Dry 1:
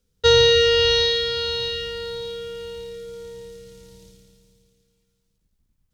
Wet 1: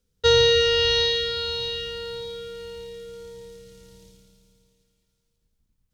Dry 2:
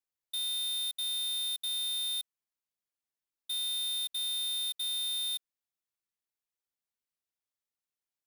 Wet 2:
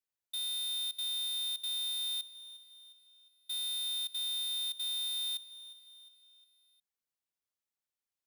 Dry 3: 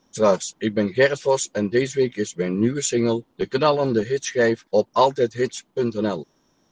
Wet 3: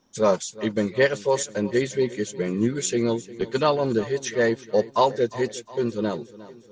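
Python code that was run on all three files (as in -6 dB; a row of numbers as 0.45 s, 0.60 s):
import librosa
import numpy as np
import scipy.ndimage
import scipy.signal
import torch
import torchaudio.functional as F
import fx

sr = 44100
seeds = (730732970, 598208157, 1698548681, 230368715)

y = fx.echo_feedback(x, sr, ms=357, feedback_pct=53, wet_db=-18)
y = F.gain(torch.from_numpy(y), -2.5).numpy()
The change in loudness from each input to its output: -2.5 LU, -2.0 LU, -2.5 LU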